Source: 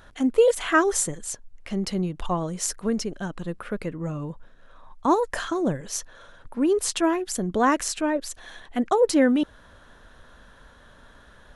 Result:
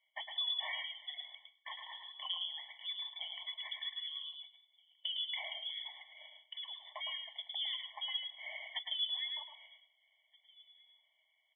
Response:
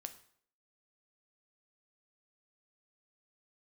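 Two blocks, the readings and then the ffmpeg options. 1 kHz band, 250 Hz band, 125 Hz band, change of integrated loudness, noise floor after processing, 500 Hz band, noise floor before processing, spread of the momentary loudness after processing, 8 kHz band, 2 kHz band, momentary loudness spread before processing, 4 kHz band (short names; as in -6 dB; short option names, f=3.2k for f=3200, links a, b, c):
-25.0 dB, under -40 dB, under -40 dB, -15.0 dB, -77 dBFS, -38.0 dB, -52 dBFS, 15 LU, under -40 dB, -14.5 dB, 14 LU, +2.0 dB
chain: -filter_complex "[0:a]highpass=85,deesser=0.9,agate=range=-22dB:threshold=-49dB:ratio=16:detection=peak,lowshelf=f=490:g=-7,acompressor=threshold=-36dB:ratio=8,flanger=delay=5.5:depth=4.3:regen=-71:speed=0.45:shape=sinusoidal,asplit=2[a][b];[b]adelay=1574,volume=-24dB,highshelf=f=4k:g=-35.4[c];[a][c]amix=inputs=2:normalize=0,asplit=2[d][e];[1:a]atrim=start_sample=2205,lowshelf=f=410:g=10.5,adelay=109[f];[e][f]afir=irnorm=-1:irlink=0,volume=-2dB[g];[d][g]amix=inputs=2:normalize=0,lowpass=f=3.3k:t=q:w=0.5098,lowpass=f=3.3k:t=q:w=0.6013,lowpass=f=3.3k:t=q:w=0.9,lowpass=f=3.3k:t=q:w=2.563,afreqshift=-3900,afftfilt=real='re*eq(mod(floor(b*sr/1024/580),2),1)':imag='im*eq(mod(floor(b*sr/1024/580),2),1)':win_size=1024:overlap=0.75,volume=5.5dB"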